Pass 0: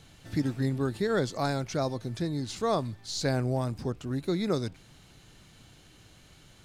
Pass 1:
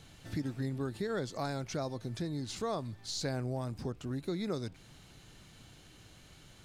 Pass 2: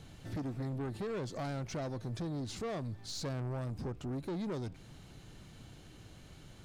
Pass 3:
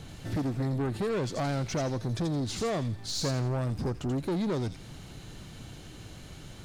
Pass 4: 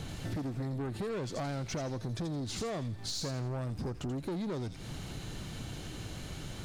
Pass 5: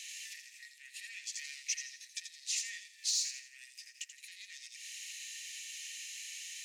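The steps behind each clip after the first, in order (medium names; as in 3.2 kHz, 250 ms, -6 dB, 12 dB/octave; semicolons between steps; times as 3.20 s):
compression 2:1, threshold -36 dBFS, peak gain reduction 8 dB; trim -1 dB
tilt shelf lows +3.5 dB; saturation -35 dBFS, distortion -9 dB; trim +1 dB
feedback echo behind a high-pass 84 ms, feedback 34%, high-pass 3.1 kHz, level -4 dB; trim +8 dB
compression 6:1, threshold -39 dBFS, peak gain reduction 11.5 dB; trim +4 dB
rippled Chebyshev high-pass 1.8 kHz, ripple 9 dB; trim +10 dB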